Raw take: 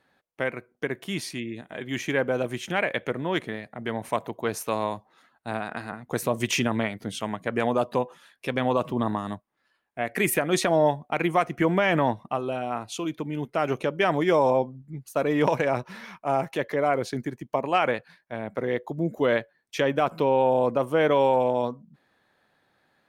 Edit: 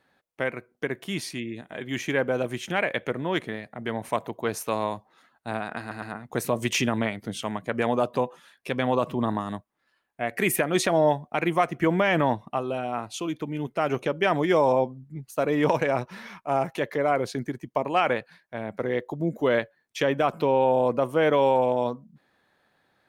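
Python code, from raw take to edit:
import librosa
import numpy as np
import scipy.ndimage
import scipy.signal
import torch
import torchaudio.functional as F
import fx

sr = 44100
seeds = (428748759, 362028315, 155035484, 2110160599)

y = fx.edit(x, sr, fx.stutter(start_s=5.8, slice_s=0.11, count=3), tone=tone)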